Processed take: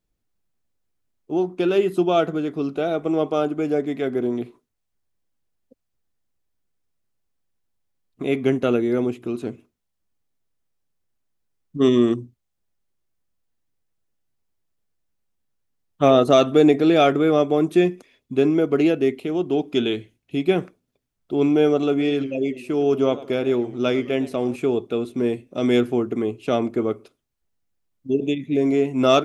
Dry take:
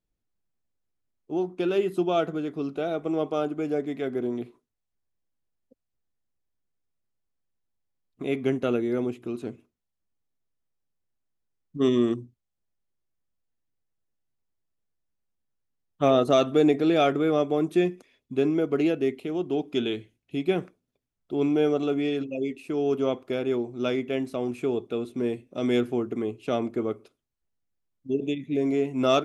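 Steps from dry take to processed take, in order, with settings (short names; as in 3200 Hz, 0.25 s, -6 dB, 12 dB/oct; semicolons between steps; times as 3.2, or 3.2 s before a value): 21.89–24.56 warbling echo 0.108 s, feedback 41%, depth 150 cents, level -17 dB; gain +5.5 dB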